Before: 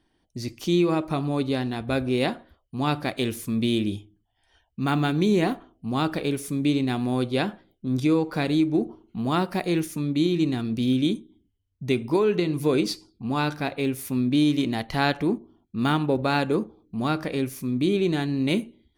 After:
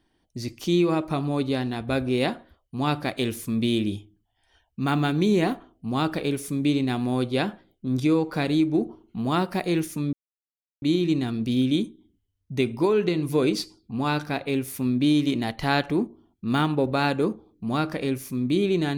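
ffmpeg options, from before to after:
-filter_complex "[0:a]asplit=2[a][b];[a]atrim=end=10.13,asetpts=PTS-STARTPTS,afade=t=out:st=10.126:d=0.004:c=hsin,apad=pad_dur=0.69[c];[b]atrim=start=10.13,asetpts=PTS-STARTPTS,afade=t=in:d=0.004:c=hsin[d];[c][d]concat=n=2:v=0:a=1"

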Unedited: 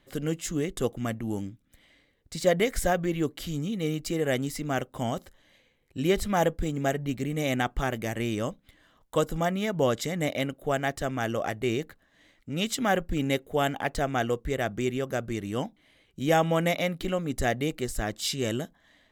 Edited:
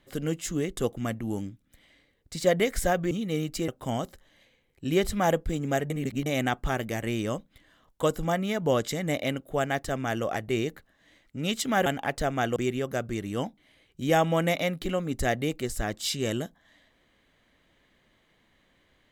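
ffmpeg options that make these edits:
-filter_complex "[0:a]asplit=7[a][b][c][d][e][f][g];[a]atrim=end=3.112[h];[b]atrim=start=3.618:end=4.192[i];[c]atrim=start=4.808:end=7.032[j];[d]atrim=start=7.028:end=7.392,asetpts=PTS-STARTPTS,areverse[k];[e]atrim=start=7.388:end=12.992[l];[f]atrim=start=13.628:end=14.332[m];[g]atrim=start=14.748[n];[h][i]acrossfade=d=0.004:c1=hsin:c2=hsin[o];[o][j]acrossfade=d=0.004:c1=hsin:c2=hsin[p];[p][k]acrossfade=d=0.004:c1=hsin:c2=hsin[q];[q][l]acrossfade=d=0.004:c1=hsin:c2=hsin[r];[r][m]acrossfade=d=0.004:c1=hsin:c2=hsin[s];[s][n]acrossfade=d=0.004:c1=hsin:c2=hsin"

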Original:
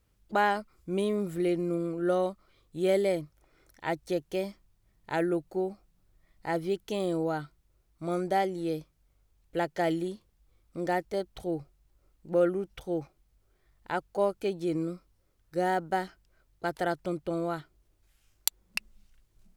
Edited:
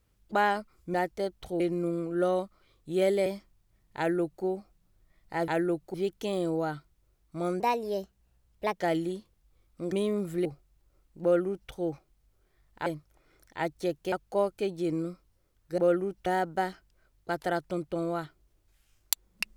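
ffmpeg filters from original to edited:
-filter_complex "[0:a]asplit=14[a][b][c][d][e][f][g][h][i][j][k][l][m][n];[a]atrim=end=0.942[o];[b]atrim=start=10.878:end=11.542[p];[c]atrim=start=1.468:end=3.132[q];[d]atrim=start=4.388:end=6.612[r];[e]atrim=start=5.108:end=5.572[s];[f]atrim=start=6.608:end=8.274[t];[g]atrim=start=8.27:end=9.76,asetpts=PTS-STARTPTS,asetrate=54684,aresample=44100,atrim=end_sample=52991,asetpts=PTS-STARTPTS[u];[h]atrim=start=9.756:end=10.882[v];[i]atrim=start=0.938:end=1.472[w];[j]atrim=start=11.538:end=13.952[x];[k]atrim=start=3.128:end=4.392[y];[l]atrim=start=13.948:end=15.612[z];[m]atrim=start=12.308:end=12.792[aa];[n]atrim=start=15.608[ab];[o][p]acrossfade=d=0.004:c1=hsin:c2=hsin[ac];[ac][q]acrossfade=d=0.004:c1=hsin:c2=hsin[ad];[ad][r]acrossfade=d=0.004:c1=hsin:c2=hsin[ae];[ae][s]acrossfade=d=0.004:c1=hsin:c2=hsin[af];[af][t]acrossfade=d=0.004:c1=hsin:c2=hsin[ag];[ag][u]acrossfade=d=0.004:c1=hsin:c2=hsin[ah];[ah][v]acrossfade=d=0.004:c1=hsin:c2=hsin[ai];[ai][w]acrossfade=d=0.004:c1=hsin:c2=hsin[aj];[aj][x]acrossfade=d=0.004:c1=hsin:c2=hsin[ak];[ak][y]acrossfade=d=0.004:c1=hsin:c2=hsin[al];[al][z]acrossfade=d=0.004:c1=hsin:c2=hsin[am];[am][aa]acrossfade=d=0.004:c1=hsin:c2=hsin[an];[an][ab]acrossfade=d=0.004:c1=hsin:c2=hsin"

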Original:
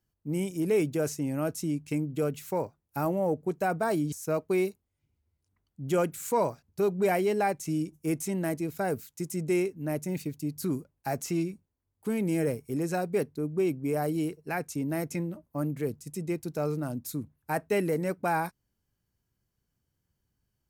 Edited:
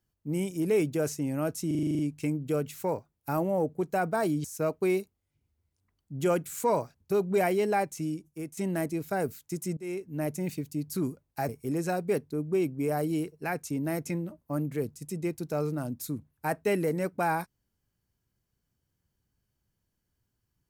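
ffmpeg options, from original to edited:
-filter_complex "[0:a]asplit=12[a][b][c][d][e][f][g][h][i][j][k][l];[a]atrim=end=1.712[m];[b]atrim=start=1.668:end=1.712[n];[c]atrim=start=1.668:end=1.712[o];[d]atrim=start=1.668:end=1.712[p];[e]atrim=start=1.668:end=1.712[q];[f]atrim=start=1.668:end=1.712[r];[g]atrim=start=1.668:end=1.712[s];[h]atrim=start=1.668:end=1.712[t];[i]atrim=start=1.668:end=8.25,asetpts=PTS-STARTPTS,afade=t=out:st=5.812:d=0.77:silence=0.223872[u];[j]atrim=start=8.25:end=9.45,asetpts=PTS-STARTPTS,afade=t=in:d=0.004:c=hsin:silence=0.223872,afade=t=out:st=1.196:d=0.004:c=hsin:silence=0.0668344[v];[k]atrim=start=9.45:end=11.172,asetpts=PTS-STARTPTS,afade=t=in:d=0.4:silence=0.0668344[w];[l]atrim=start=12.538[x];[m][n]acrossfade=d=0.004:c1=hsin:c2=hsin[y];[y][o]acrossfade=d=0.004:c1=hsin:c2=hsin[z];[z][p]acrossfade=d=0.004:c1=hsin:c2=hsin[aa];[aa][q]acrossfade=d=0.004:c1=hsin:c2=hsin[ab];[ab][r]acrossfade=d=0.004:c1=hsin:c2=hsin[ac];[ac][s]acrossfade=d=0.004:c1=hsin:c2=hsin[ad];[ad][t]acrossfade=d=0.004:c1=hsin:c2=hsin[ae];[u][v][w]concat=n=3:v=0:a=1[af];[ae][af]acrossfade=d=0.004:c1=hsin:c2=hsin[ag];[ag][x]acrossfade=d=0.004:c1=hsin:c2=hsin"

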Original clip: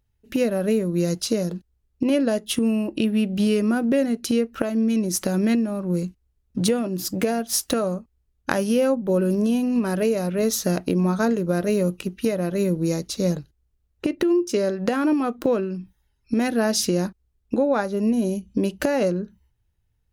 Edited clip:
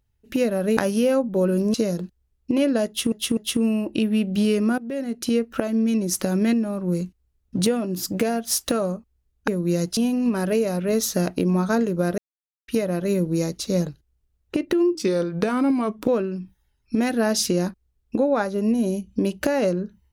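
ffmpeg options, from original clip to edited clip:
-filter_complex "[0:a]asplit=12[a][b][c][d][e][f][g][h][i][j][k][l];[a]atrim=end=0.772[m];[b]atrim=start=8.498:end=9.472[n];[c]atrim=start=1.258:end=2.642[o];[d]atrim=start=2.388:end=2.642[p];[e]atrim=start=2.388:end=3.8,asetpts=PTS-STARTPTS,afade=t=out:st=1.408:d=0.004:c=hsin:silence=0.125893[q];[f]atrim=start=3.8:end=8.502,asetpts=PTS-STARTPTS,afade=t=in:d=0.57:silence=0.125893[r];[g]atrim=start=0.768:end=1.262[s];[h]atrim=start=9.468:end=11.68,asetpts=PTS-STARTPTS,afade=t=out:st=2.208:d=0.004:c=hsin[t];[i]atrim=start=11.68:end=12.18,asetpts=PTS-STARTPTS,volume=0[u];[j]atrim=start=12.18:end=14.454,asetpts=PTS-STARTPTS,afade=t=in:d=0.004:c=hsin[v];[k]atrim=start=14.45:end=15.47,asetpts=PTS-STARTPTS,asetrate=39690,aresample=44100[w];[l]atrim=start=15.466[x];[m][n]acrossfade=d=0.004:c1=hsin:c2=hsin[y];[y][o]acrossfade=d=0.004:c1=hsin:c2=hsin[z];[z][p]acrossfade=d=0.004:c1=hsin:c2=hsin[aa];[q][r]concat=n=2:v=0:a=1[ab];[aa][ab]acrossfade=d=0.004:c1=hsin:c2=hsin[ac];[ac][s]acrossfade=d=0.004:c1=hsin:c2=hsin[ad];[t][u][v]concat=n=3:v=0:a=1[ae];[ad][ae]acrossfade=d=0.004:c1=hsin:c2=hsin[af];[af][w]acrossfade=d=0.004:c1=hsin:c2=hsin[ag];[ag][x]acrossfade=d=0.004:c1=hsin:c2=hsin"

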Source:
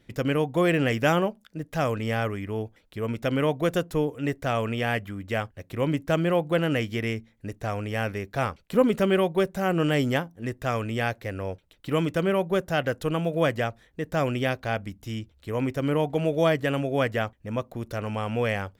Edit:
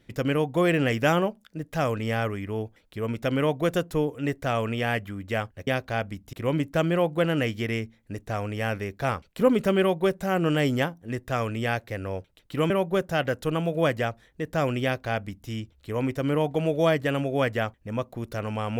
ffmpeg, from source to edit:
-filter_complex "[0:a]asplit=4[a][b][c][d];[a]atrim=end=5.672[e];[b]atrim=start=14.418:end=15.082[f];[c]atrim=start=5.668:end=12.042[g];[d]atrim=start=12.288[h];[e][f]acrossfade=d=0.004:c1=hsin:c2=hsin[i];[i][g]acrossfade=d=0.004:c1=hsin:c2=hsin[j];[j][h]acrossfade=d=0.004:c1=hsin:c2=hsin"

